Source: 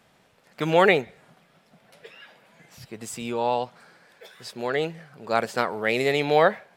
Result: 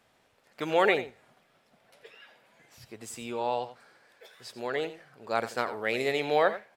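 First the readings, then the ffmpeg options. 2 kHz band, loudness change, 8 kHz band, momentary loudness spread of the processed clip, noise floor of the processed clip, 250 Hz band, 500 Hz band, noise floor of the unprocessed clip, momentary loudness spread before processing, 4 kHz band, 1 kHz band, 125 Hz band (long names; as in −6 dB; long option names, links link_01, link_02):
−5.5 dB, −5.5 dB, −5.5 dB, 18 LU, −67 dBFS, −7.0 dB, −5.5 dB, −61 dBFS, 21 LU, −5.5 dB, −5.5 dB, −11.5 dB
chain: -filter_complex "[0:a]equalizer=frequency=170:width=2.9:gain=-10.5,asplit=2[link_01][link_02];[link_02]aecho=0:1:88:0.211[link_03];[link_01][link_03]amix=inputs=2:normalize=0,volume=-5.5dB"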